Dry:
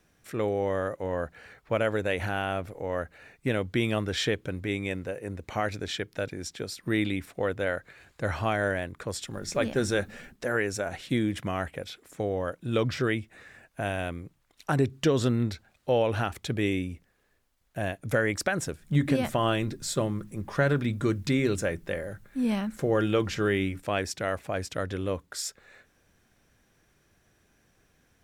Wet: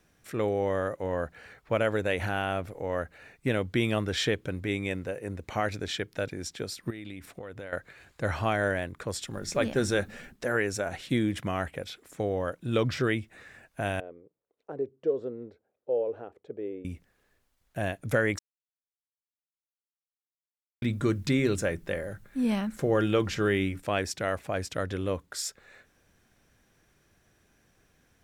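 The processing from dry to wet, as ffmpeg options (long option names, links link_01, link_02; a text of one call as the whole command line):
ffmpeg -i in.wav -filter_complex "[0:a]asettb=1/sr,asplit=3[link_01][link_02][link_03];[link_01]atrim=end=6.904[link_04];[link_02]atrim=start=6.9:end=7.73,asetpts=PTS-STARTPTS,afade=type=in:duration=0.004:curve=qsin,afade=type=out:start_time=0.826:duration=0.004:curve=qsin,acompressor=threshold=-36dB:ratio=20:attack=3.2:release=140:knee=1:detection=peak[link_05];[link_03]atrim=start=7.726[link_06];[link_04][link_05]acrossfade=duration=0.004:curve1=hsin:curve2=qsin[link_07];[link_07][link_06]acrossfade=duration=0.004:curve1=qsin:curve2=hsin,asettb=1/sr,asplit=3[link_08][link_09][link_10];[link_08]atrim=end=14.004[link_11];[link_09]atrim=start=14:end=16.85,asetpts=PTS-STARTPTS,afade=type=in:duration=0.004:curve=qsin,afade=type=out:start_time=2.846:duration=0.004:curve=qsin,bandpass=frequency=460:width_type=q:width=4.4[link_12];[link_10]atrim=start=16.846[link_13];[link_11][link_12]acrossfade=duration=0.004:curve1=hsin:curve2=qsin[link_14];[link_14][link_13]acrossfade=duration=0.004:curve1=qsin:curve2=hsin,asplit=3[link_15][link_16][link_17];[link_15]atrim=end=18.39,asetpts=PTS-STARTPTS,afade=type=out:start_time=18.386:duration=0.004:curve=hsin[link_18];[link_16]atrim=start=18.39:end=20.82,asetpts=PTS-STARTPTS,volume=0[link_19];[link_17]atrim=start=20.82,asetpts=PTS-STARTPTS,afade=type=in:duration=0.004:curve=hsin[link_20];[link_18][link_19][link_20]concat=n=3:v=0:a=1" out.wav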